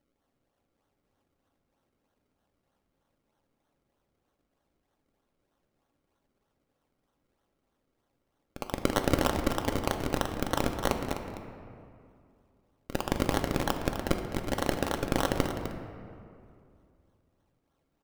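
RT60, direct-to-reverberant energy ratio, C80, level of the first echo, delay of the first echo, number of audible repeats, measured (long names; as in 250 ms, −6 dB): 2.4 s, 3.0 dB, 6.0 dB, −10.5 dB, 254 ms, 1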